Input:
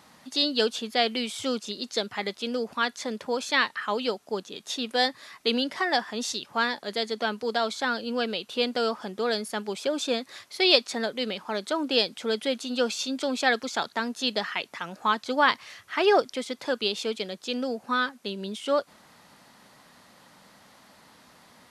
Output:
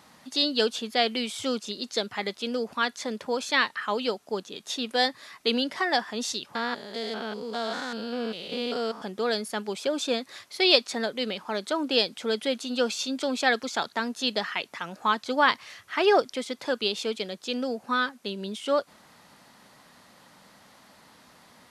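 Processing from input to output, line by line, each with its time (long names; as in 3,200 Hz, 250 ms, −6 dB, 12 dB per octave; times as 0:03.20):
0:06.55–0:09.02: spectrum averaged block by block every 200 ms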